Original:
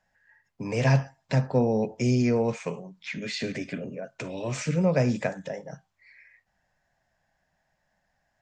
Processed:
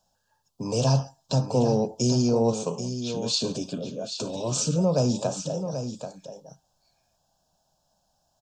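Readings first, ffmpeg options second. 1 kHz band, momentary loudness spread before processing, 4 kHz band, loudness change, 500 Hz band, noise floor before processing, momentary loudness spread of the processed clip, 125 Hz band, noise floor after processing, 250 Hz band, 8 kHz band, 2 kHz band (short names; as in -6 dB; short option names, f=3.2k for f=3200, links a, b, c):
+2.0 dB, 14 LU, +9.0 dB, +1.0 dB, +2.0 dB, -75 dBFS, 11 LU, +0.5 dB, -73 dBFS, +1.0 dB, +11.0 dB, -13.0 dB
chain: -filter_complex "[0:a]asuperstop=centerf=2000:order=4:qfactor=0.78,asplit=2[a][b];[b]alimiter=limit=-19dB:level=0:latency=1:release=31,volume=1dB[c];[a][c]amix=inputs=2:normalize=0,tiltshelf=f=1.5k:g=-5,aecho=1:1:784:0.355"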